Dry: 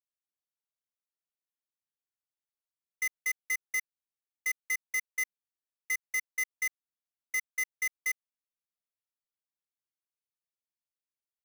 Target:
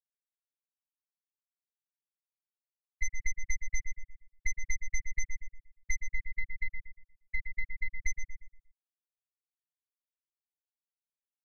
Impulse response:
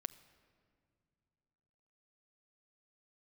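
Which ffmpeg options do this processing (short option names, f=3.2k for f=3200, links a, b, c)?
-filter_complex "[0:a]asettb=1/sr,asplit=3[a][b][c];[a]atrim=end=6.004[d];[b]atrim=start=6:end=8.02,asetpts=PTS-STARTPTS,afade=t=in:d=0.004:c=qsin,afade=t=out:st=2.016:d=0.004:c=qsin,equalizer=f=6.2k:w=0.48:g=-11.5[e];[c]atrim=start=8.016[f];[d][e]acrossfade=d=0.004:c1=hsin:c2=qsin[g];[g][f]acrossfade=d=0.004:c1=qsin:c2=hsin,aeval=exprs='max(val(0),0)':c=same,afftfilt=real='re*gte(hypot(re,im),0.0794)':imag='im*gte(hypot(re,im),0.0794)':win_size=1024:overlap=0.75,acrossover=split=330|3000[h][i][j];[i]acompressor=threshold=-44dB:ratio=6[k];[h][k][j]amix=inputs=3:normalize=0,aecho=1:1:5.7:0.91,asplit=2[l][m];[m]adelay=118,lowpass=f=2.3k:p=1,volume=-6dB,asplit=2[n][o];[o]adelay=118,lowpass=f=2.3k:p=1,volume=0.38,asplit=2[p][q];[q]adelay=118,lowpass=f=2.3k:p=1,volume=0.38,asplit=2[r][s];[s]adelay=118,lowpass=f=2.3k:p=1,volume=0.38,asplit=2[t][u];[u]adelay=118,lowpass=f=2.3k:p=1,volume=0.38[v];[l][n][p][r][t][v]amix=inputs=6:normalize=0,acompressor=threshold=-36dB:ratio=6,aeval=exprs='0.0335*(cos(1*acos(clip(val(0)/0.0335,-1,1)))-cos(1*PI/2))+0.000473*(cos(8*acos(clip(val(0)/0.0335,-1,1)))-cos(8*PI/2))':c=same,volume=11.5dB"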